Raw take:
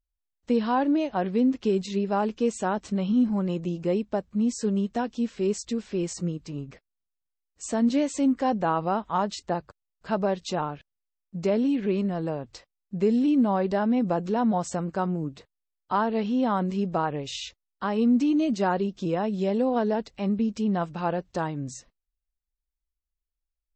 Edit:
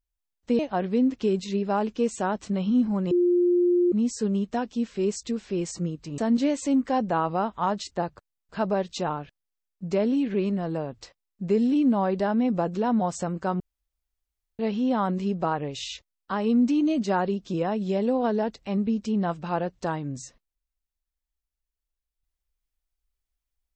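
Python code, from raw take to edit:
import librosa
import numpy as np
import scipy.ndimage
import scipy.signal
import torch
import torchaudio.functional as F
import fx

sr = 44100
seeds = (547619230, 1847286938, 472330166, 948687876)

y = fx.edit(x, sr, fx.cut(start_s=0.59, length_s=0.42),
    fx.bleep(start_s=3.53, length_s=0.81, hz=353.0, db=-17.5),
    fx.cut(start_s=6.6, length_s=1.1),
    fx.room_tone_fill(start_s=15.12, length_s=0.99), tone=tone)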